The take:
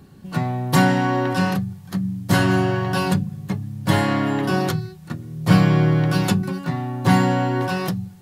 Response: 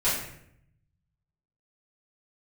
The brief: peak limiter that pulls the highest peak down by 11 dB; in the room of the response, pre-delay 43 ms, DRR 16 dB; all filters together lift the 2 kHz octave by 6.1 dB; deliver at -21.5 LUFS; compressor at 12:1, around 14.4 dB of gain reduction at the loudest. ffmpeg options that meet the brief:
-filter_complex "[0:a]equalizer=f=2000:t=o:g=8.5,acompressor=threshold=0.0708:ratio=12,alimiter=limit=0.0794:level=0:latency=1,asplit=2[s0][s1];[1:a]atrim=start_sample=2205,adelay=43[s2];[s1][s2]afir=irnorm=-1:irlink=0,volume=0.0398[s3];[s0][s3]amix=inputs=2:normalize=0,volume=2.99"

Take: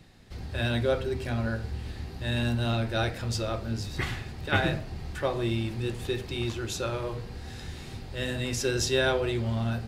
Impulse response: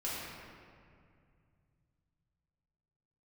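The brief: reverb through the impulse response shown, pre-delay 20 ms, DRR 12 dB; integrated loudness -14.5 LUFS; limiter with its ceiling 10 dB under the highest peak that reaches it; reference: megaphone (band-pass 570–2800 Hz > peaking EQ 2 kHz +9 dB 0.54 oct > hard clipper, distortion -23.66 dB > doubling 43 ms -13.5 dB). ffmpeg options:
-filter_complex "[0:a]alimiter=limit=0.0944:level=0:latency=1,asplit=2[s0][s1];[1:a]atrim=start_sample=2205,adelay=20[s2];[s1][s2]afir=irnorm=-1:irlink=0,volume=0.158[s3];[s0][s3]amix=inputs=2:normalize=0,highpass=570,lowpass=2800,equalizer=f=2000:t=o:w=0.54:g=9,asoftclip=type=hard:threshold=0.0631,asplit=2[s4][s5];[s5]adelay=43,volume=0.211[s6];[s4][s6]amix=inputs=2:normalize=0,volume=11.2"

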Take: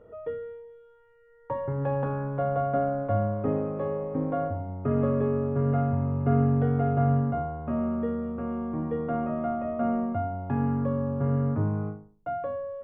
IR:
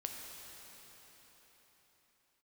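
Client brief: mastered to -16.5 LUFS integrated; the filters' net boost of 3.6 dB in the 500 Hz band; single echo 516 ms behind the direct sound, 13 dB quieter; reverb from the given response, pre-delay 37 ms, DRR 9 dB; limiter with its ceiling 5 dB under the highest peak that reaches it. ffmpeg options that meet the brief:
-filter_complex "[0:a]equalizer=f=500:t=o:g=4.5,alimiter=limit=0.15:level=0:latency=1,aecho=1:1:516:0.224,asplit=2[s0][s1];[1:a]atrim=start_sample=2205,adelay=37[s2];[s1][s2]afir=irnorm=-1:irlink=0,volume=0.376[s3];[s0][s3]amix=inputs=2:normalize=0,volume=3.35"

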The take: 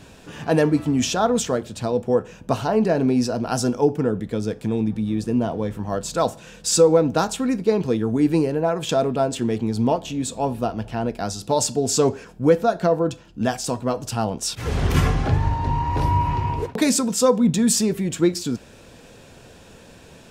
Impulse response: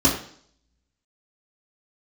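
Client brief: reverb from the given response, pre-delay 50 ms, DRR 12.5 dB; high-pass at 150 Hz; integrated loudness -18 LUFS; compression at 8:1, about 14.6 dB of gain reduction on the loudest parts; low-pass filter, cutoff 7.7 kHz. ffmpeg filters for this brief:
-filter_complex "[0:a]highpass=150,lowpass=7700,acompressor=threshold=0.0501:ratio=8,asplit=2[s0][s1];[1:a]atrim=start_sample=2205,adelay=50[s2];[s1][s2]afir=irnorm=-1:irlink=0,volume=0.0335[s3];[s0][s3]amix=inputs=2:normalize=0,volume=3.76"

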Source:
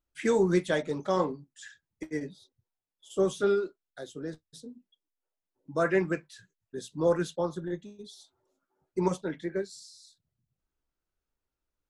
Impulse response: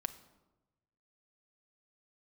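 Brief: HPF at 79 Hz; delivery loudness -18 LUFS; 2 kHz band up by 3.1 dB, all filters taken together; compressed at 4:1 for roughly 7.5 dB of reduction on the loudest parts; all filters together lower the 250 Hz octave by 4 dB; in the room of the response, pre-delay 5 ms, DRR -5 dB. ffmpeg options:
-filter_complex "[0:a]highpass=79,equalizer=f=250:t=o:g=-7,equalizer=f=2000:t=o:g=4,acompressor=threshold=0.0282:ratio=4,asplit=2[s0][s1];[1:a]atrim=start_sample=2205,adelay=5[s2];[s1][s2]afir=irnorm=-1:irlink=0,volume=1.78[s3];[s0][s3]amix=inputs=2:normalize=0,volume=5.01"

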